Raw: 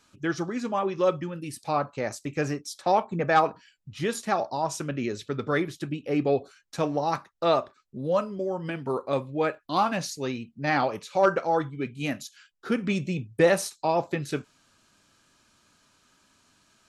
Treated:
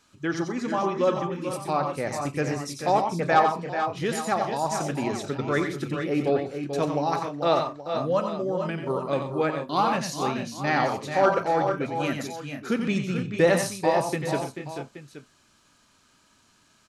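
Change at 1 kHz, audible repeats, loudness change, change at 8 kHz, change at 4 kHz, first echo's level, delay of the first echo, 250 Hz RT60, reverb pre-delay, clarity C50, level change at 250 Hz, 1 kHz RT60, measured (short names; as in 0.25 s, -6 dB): +2.5 dB, 4, +1.5 dB, +2.0 dB, +2.0 dB, -6.0 dB, 90 ms, none, none, none, +2.0 dB, none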